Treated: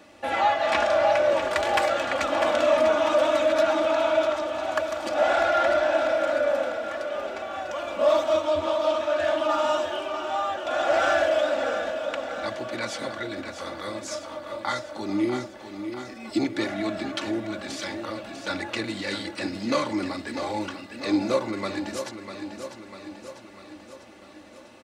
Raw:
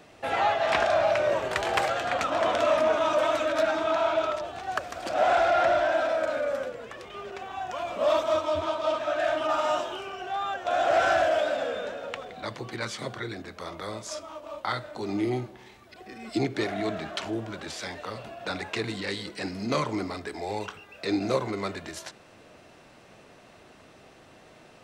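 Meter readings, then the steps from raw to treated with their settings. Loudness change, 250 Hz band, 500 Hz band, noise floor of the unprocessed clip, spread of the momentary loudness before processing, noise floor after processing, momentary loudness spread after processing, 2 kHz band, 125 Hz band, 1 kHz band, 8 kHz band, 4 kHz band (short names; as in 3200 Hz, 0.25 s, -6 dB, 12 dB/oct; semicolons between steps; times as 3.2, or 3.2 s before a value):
+2.5 dB, +4.0 dB, +3.0 dB, -53 dBFS, 15 LU, -47 dBFS, 14 LU, +2.0 dB, -3.5 dB, +1.0 dB, +2.5 dB, +2.5 dB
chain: HPF 62 Hz; comb 3.5 ms, depth 68%; feedback echo 0.647 s, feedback 59%, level -9 dB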